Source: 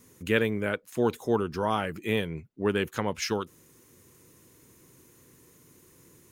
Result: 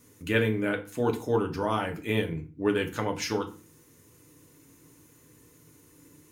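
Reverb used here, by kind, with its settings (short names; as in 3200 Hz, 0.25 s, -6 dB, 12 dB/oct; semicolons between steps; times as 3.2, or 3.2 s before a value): FDN reverb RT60 0.38 s, low-frequency decay 1.5×, high-frequency decay 0.8×, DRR 3 dB; gain -2 dB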